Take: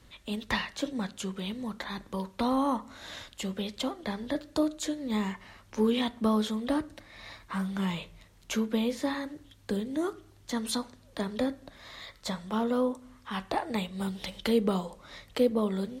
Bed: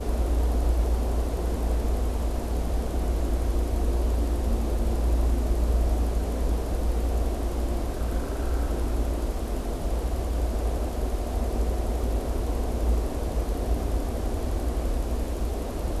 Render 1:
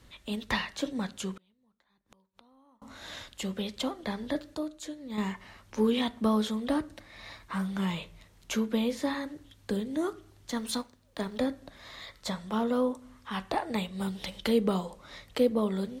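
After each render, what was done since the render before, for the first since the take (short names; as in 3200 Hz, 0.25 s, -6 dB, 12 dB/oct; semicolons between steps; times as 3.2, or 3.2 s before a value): 1.34–2.82 flipped gate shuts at -37 dBFS, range -35 dB; 4.55–5.18 gain -7.5 dB; 10.51–11.39 G.711 law mismatch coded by A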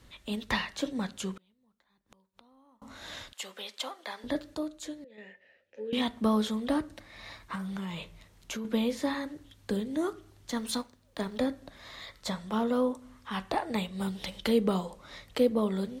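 3.33–4.24 HPF 730 Hz; 5.04–5.93 vowel filter e; 7.55–8.65 compressor, threshold -33 dBFS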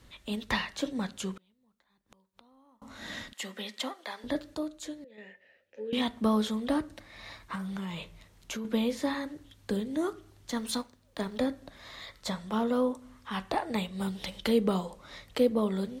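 2.98–3.92 small resonant body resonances 220/1900 Hz, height 13 dB -> 15 dB, ringing for 35 ms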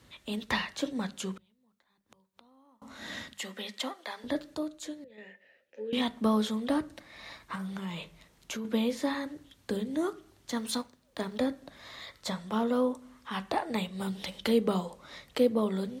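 HPF 64 Hz 12 dB/oct; notches 50/100/150/200 Hz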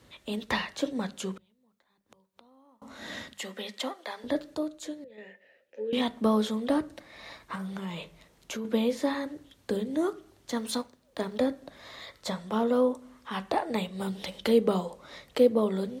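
bell 500 Hz +4.5 dB 1.4 oct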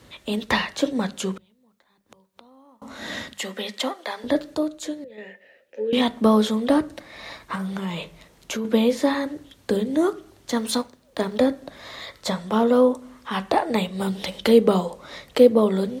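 gain +7.5 dB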